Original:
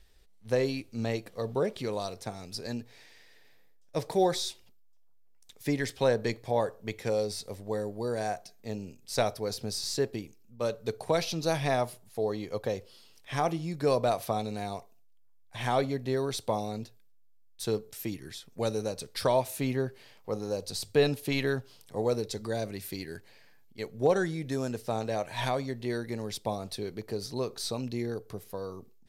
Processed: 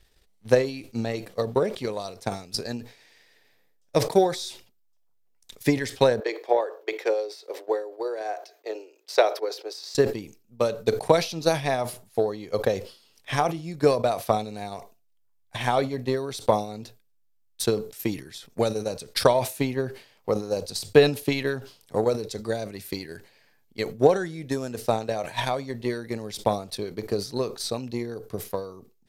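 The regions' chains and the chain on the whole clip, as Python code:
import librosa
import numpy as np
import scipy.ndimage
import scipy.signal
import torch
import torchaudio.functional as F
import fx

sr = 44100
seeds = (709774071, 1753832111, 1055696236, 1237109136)

y = fx.chain(x, sr, fx.steep_highpass(hz=330.0, slope=72),
    fx.peak_eq(hz=9600.0, db=-14.5, octaves=1.3), at=(6.2, 9.95))
y = fx.transient(y, sr, attack_db=11, sustain_db=-2)
y = fx.low_shelf(y, sr, hz=88.0, db=-7.5)
y = fx.sustainer(y, sr, db_per_s=130.0)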